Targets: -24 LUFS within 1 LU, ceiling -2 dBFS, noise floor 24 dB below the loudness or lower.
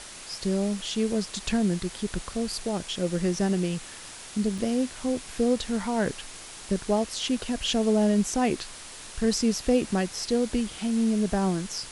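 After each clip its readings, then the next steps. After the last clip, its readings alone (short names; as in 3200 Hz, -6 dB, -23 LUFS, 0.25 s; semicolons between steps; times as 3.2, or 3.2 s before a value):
dropouts 1; longest dropout 3.8 ms; noise floor -43 dBFS; noise floor target -51 dBFS; loudness -27.0 LUFS; peak -11.5 dBFS; loudness target -24.0 LUFS
-> interpolate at 4.58, 3.8 ms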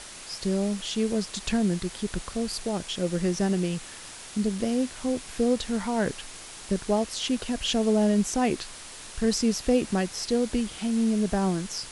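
dropouts 0; noise floor -43 dBFS; noise floor target -51 dBFS
-> denoiser 8 dB, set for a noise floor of -43 dBFS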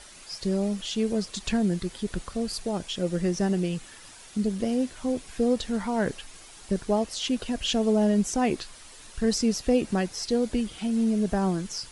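noise floor -48 dBFS; noise floor target -52 dBFS
-> denoiser 6 dB, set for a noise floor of -48 dBFS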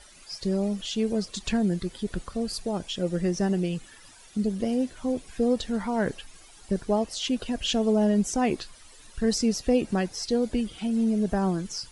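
noise floor -51 dBFS; noise floor target -52 dBFS
-> denoiser 6 dB, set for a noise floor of -51 dBFS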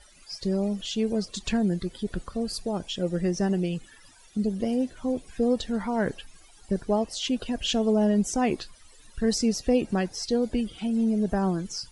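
noise floor -54 dBFS; loudness -27.5 LUFS; peak -11.5 dBFS; loudness target -24.0 LUFS
-> gain +3.5 dB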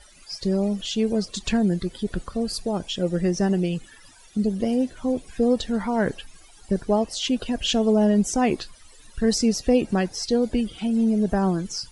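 loudness -24.0 LUFS; peak -8.0 dBFS; noise floor -50 dBFS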